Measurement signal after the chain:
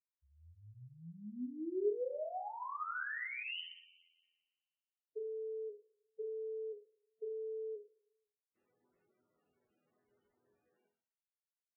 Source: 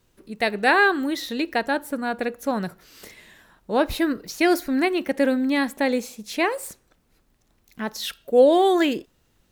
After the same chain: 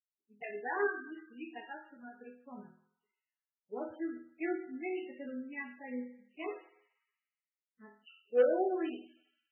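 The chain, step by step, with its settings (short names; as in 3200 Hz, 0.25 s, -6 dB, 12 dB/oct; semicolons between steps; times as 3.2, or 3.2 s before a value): per-bin expansion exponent 2; in parallel at -7.5 dB: wrapped overs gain 11 dB; on the sum: speaker cabinet 270–7400 Hz, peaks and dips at 400 Hz +9 dB, 890 Hz -4 dB, 2400 Hz -3 dB, 4100 Hz -4 dB; resonator bank E2 major, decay 0.52 s; on a send: thinning echo 60 ms, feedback 76%, high-pass 440 Hz, level -18 dB; on the sum: gain -1 dB; MP3 8 kbps 22050 Hz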